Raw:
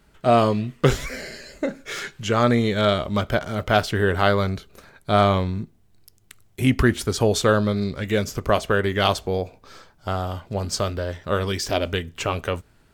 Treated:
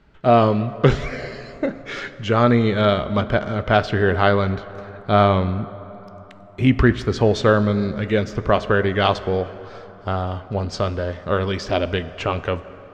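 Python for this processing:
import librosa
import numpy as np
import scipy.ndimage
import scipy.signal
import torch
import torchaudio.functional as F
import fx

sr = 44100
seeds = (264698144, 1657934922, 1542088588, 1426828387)

y = fx.air_absorb(x, sr, metres=180.0)
y = fx.rev_plate(y, sr, seeds[0], rt60_s=3.9, hf_ratio=0.5, predelay_ms=0, drr_db=14.0)
y = F.gain(torch.from_numpy(y), 3.0).numpy()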